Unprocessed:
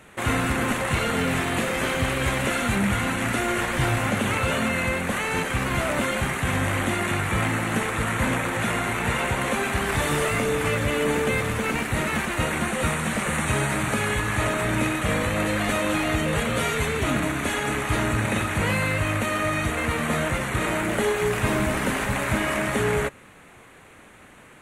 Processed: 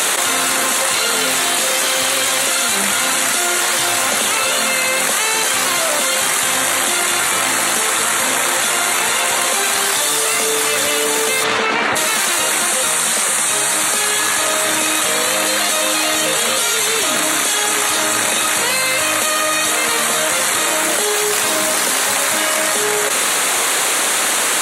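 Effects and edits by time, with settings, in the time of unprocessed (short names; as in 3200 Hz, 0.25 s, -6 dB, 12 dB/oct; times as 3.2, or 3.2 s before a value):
11.43–11.95 LPF 4100 Hz -> 1900 Hz
whole clip: Bessel high-pass 640 Hz, order 2; resonant high shelf 3200 Hz +9.5 dB, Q 1.5; fast leveller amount 100%; gain +5.5 dB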